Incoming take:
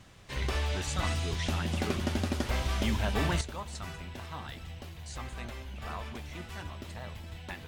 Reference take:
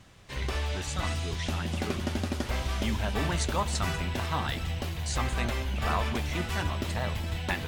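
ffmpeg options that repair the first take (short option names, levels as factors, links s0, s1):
-af "asetnsamples=n=441:p=0,asendcmd='3.41 volume volume 11dB',volume=1"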